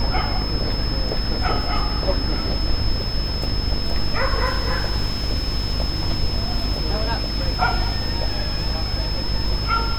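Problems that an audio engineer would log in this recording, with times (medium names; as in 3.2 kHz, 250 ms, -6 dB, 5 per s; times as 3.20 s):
buzz 50 Hz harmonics 37 -26 dBFS
whine 5.2 kHz -28 dBFS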